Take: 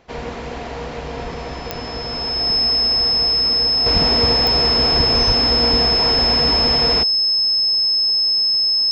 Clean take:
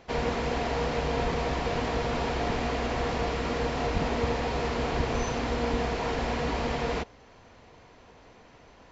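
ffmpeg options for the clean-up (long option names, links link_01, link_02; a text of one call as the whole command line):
ffmpeg -i in.wav -filter_complex "[0:a]adeclick=threshold=4,bandreject=frequency=5200:width=30,asplit=3[link_01][link_02][link_03];[link_01]afade=type=out:start_time=5.26:duration=0.02[link_04];[link_02]highpass=frequency=140:width=0.5412,highpass=frequency=140:width=1.3066,afade=type=in:start_time=5.26:duration=0.02,afade=type=out:start_time=5.38:duration=0.02[link_05];[link_03]afade=type=in:start_time=5.38:duration=0.02[link_06];[link_04][link_05][link_06]amix=inputs=3:normalize=0,asetnsamples=nb_out_samples=441:pad=0,asendcmd='3.86 volume volume -8dB',volume=0dB" out.wav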